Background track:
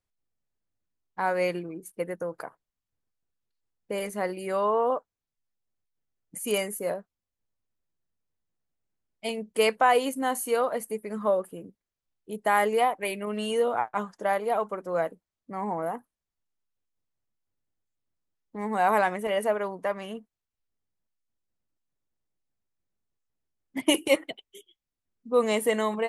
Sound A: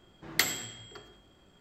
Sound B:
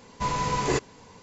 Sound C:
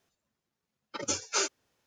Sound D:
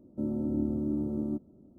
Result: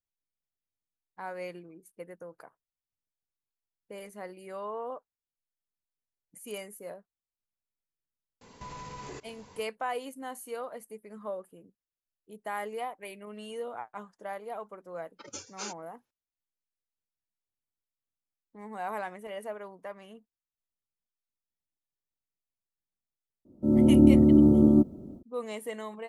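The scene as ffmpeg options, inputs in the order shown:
ffmpeg -i bed.wav -i cue0.wav -i cue1.wav -i cue2.wav -i cue3.wav -filter_complex "[0:a]volume=-12.5dB[link_01];[2:a]acompressor=threshold=-36dB:ratio=6:attack=3.2:release=140:knee=1:detection=peak[link_02];[4:a]dynaudnorm=framelen=170:gausssize=3:maxgain=15dB[link_03];[link_02]atrim=end=1.22,asetpts=PTS-STARTPTS,volume=-4dB,afade=type=in:duration=0.004:curve=hsin,afade=type=out:start_time=1.216:duration=0.004:curve=hsin,adelay=8410[link_04];[3:a]atrim=end=1.86,asetpts=PTS-STARTPTS,volume=-11dB,afade=type=in:duration=0.004:curve=hsin,afade=type=out:start_time=1.856:duration=0.004:curve=hsin,adelay=14250[link_05];[link_03]atrim=end=1.78,asetpts=PTS-STARTPTS,volume=-2dB,afade=type=in:duration=0.004:curve=hsin,afade=type=out:start_time=1.776:duration=0.004:curve=hsin,adelay=23450[link_06];[link_01][link_04][link_05][link_06]amix=inputs=4:normalize=0" out.wav

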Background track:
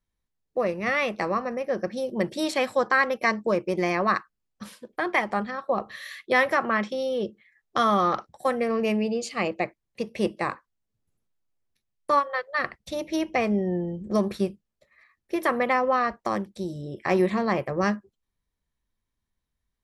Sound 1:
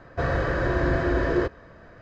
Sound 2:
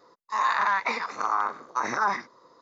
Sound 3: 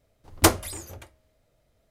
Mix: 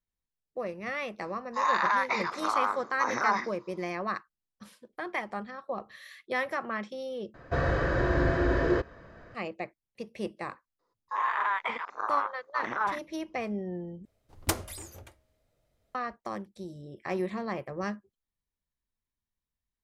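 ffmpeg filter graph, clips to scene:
ffmpeg -i bed.wav -i cue0.wav -i cue1.wav -i cue2.wav -filter_complex "[2:a]asplit=2[link_01][link_02];[0:a]volume=-9.5dB[link_03];[link_02]afwtdn=0.0282[link_04];[3:a]acompressor=threshold=-26dB:ratio=5:attack=71:release=162:knee=1:detection=peak[link_05];[link_03]asplit=3[link_06][link_07][link_08];[link_06]atrim=end=7.344[link_09];[1:a]atrim=end=2.01,asetpts=PTS-STARTPTS,volume=-2.5dB[link_10];[link_07]atrim=start=9.346:end=14.054[link_11];[link_05]atrim=end=1.9,asetpts=PTS-STARTPTS,volume=-6dB[link_12];[link_08]atrim=start=15.946[link_13];[link_01]atrim=end=2.61,asetpts=PTS-STARTPTS,volume=-2dB,afade=type=in:duration=0.004:curve=hsin,afade=type=out:start_time=2.606:duration=0.004:curve=hsin,adelay=1240[link_14];[link_04]atrim=end=2.61,asetpts=PTS-STARTPTS,volume=-4.5dB,afade=type=in:duration=0.004:curve=hsin,afade=type=out:start_time=2.606:duration=0.004:curve=hsin,adelay=10790[link_15];[link_09][link_10]acrossfade=duration=0.004:curve1=hsin:curve2=hsin[link_16];[link_16][link_11]acrossfade=duration=0.004:curve1=hsin:curve2=hsin[link_17];[link_17][link_12]acrossfade=duration=0.004:curve1=hsin:curve2=hsin[link_18];[link_18][link_13]acrossfade=duration=0.004:curve1=hsin:curve2=hsin[link_19];[link_19][link_14][link_15]amix=inputs=3:normalize=0" out.wav

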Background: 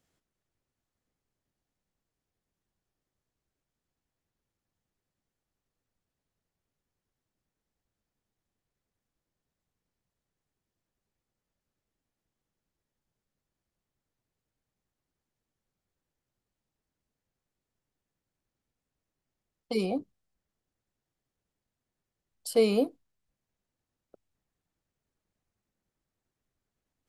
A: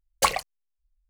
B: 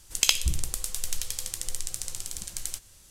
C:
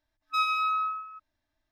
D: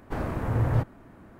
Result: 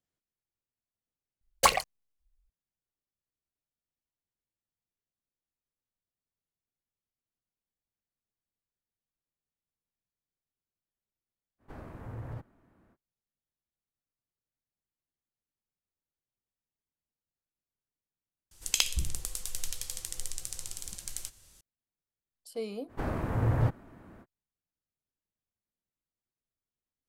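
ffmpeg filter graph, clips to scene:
ffmpeg -i bed.wav -i cue0.wav -i cue1.wav -i cue2.wav -i cue3.wav -filter_complex "[4:a]asplit=2[link_01][link_02];[0:a]volume=-13.5dB[link_03];[link_01]alimiter=limit=-16dB:level=0:latency=1:release=70[link_04];[link_03]asplit=2[link_05][link_06];[link_05]atrim=end=18.514[link_07];[2:a]atrim=end=3.1,asetpts=PTS-STARTPTS,volume=-5dB[link_08];[link_06]atrim=start=21.606[link_09];[1:a]atrim=end=1.09,asetpts=PTS-STARTPTS,volume=-1dB,afade=type=in:duration=0.004:curve=hsin,afade=type=out:start_time=1.086:duration=0.004:curve=hsin,adelay=1410[link_10];[link_04]atrim=end=1.39,asetpts=PTS-STARTPTS,volume=-15.5dB,afade=type=in:duration=0.05,afade=type=out:start_time=1.34:duration=0.05,adelay=11580[link_11];[link_02]atrim=end=1.39,asetpts=PTS-STARTPTS,volume=-2.5dB,afade=type=in:duration=0.05,afade=type=out:start_time=1.34:duration=0.05,adelay=22870[link_12];[link_07][link_08]acrossfade=duration=0.004:curve1=hsin:curve2=hsin[link_13];[link_13][link_09]acrossfade=duration=0.004:curve1=hsin:curve2=hsin[link_14];[link_14][link_10][link_11][link_12]amix=inputs=4:normalize=0" out.wav

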